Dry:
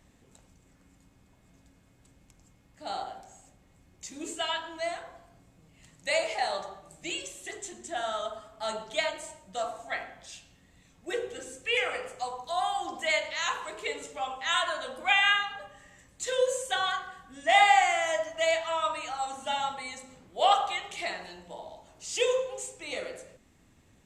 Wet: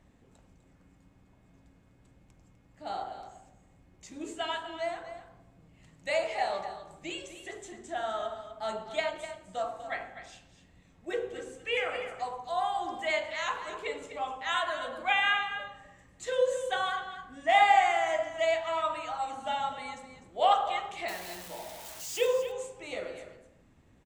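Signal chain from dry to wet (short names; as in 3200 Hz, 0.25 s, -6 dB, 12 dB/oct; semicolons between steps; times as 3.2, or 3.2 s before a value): 21.08–22.27 switching spikes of -26 dBFS; high shelf 3100 Hz -11 dB; echo 0.25 s -11.5 dB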